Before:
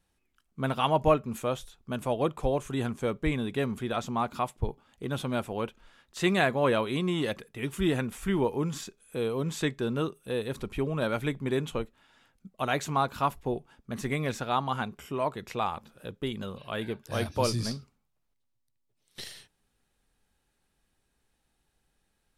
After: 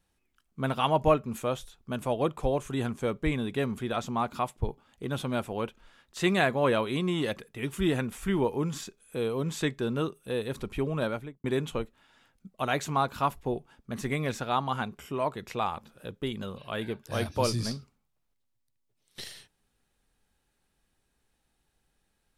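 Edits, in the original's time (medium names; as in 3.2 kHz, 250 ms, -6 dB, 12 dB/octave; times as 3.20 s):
10.98–11.44 s: studio fade out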